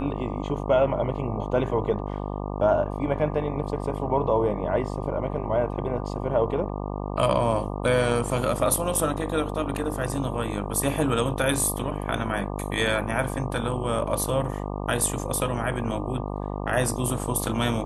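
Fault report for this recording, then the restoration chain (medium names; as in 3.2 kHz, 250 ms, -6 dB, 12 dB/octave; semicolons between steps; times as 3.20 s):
buzz 50 Hz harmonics 24 -31 dBFS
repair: de-hum 50 Hz, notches 24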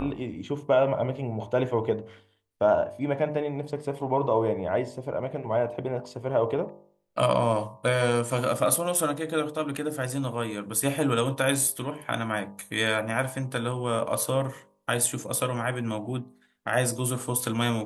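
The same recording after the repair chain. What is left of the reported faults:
nothing left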